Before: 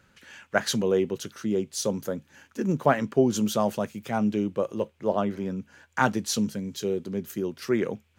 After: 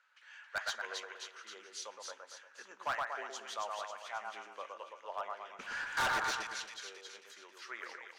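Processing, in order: ladder high-pass 820 Hz, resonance 25%; 5.59–6.20 s: power-law waveshaper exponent 0.5; distance through air 90 m; two-band feedback delay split 2 kHz, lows 117 ms, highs 271 ms, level -3.5 dB; on a send at -18.5 dB: reverberation RT60 1.1 s, pre-delay 5 ms; on the sum: hard clipper -27.5 dBFS, distortion -8 dB; trim -2 dB

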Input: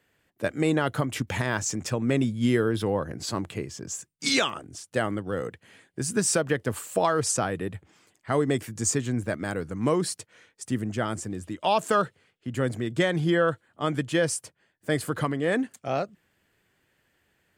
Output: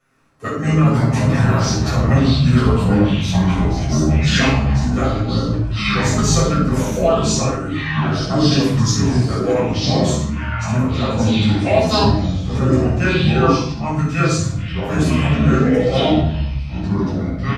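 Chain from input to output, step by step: comb 7.4 ms, depth 86%; harmony voices -7 st -16 dB; flutter echo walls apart 8.7 m, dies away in 0.4 s; ever faster or slower copies 80 ms, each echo -5 st, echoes 3; formant shift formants -4 st; reverberation RT60 0.50 s, pre-delay 6 ms, DRR -6 dB; trim -5.5 dB

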